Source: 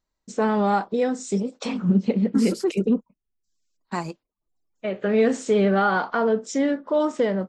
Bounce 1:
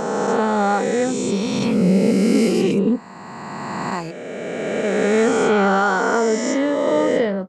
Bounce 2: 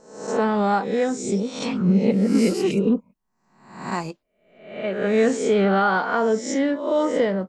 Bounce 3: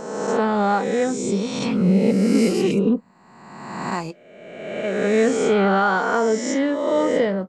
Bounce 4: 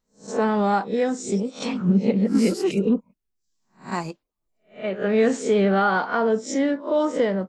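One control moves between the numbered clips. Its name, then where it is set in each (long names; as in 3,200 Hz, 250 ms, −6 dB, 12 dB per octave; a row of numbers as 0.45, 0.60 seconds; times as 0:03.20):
peak hold with a rise ahead of every peak, rising 60 dB in: 3.16, 0.66, 1.47, 0.31 seconds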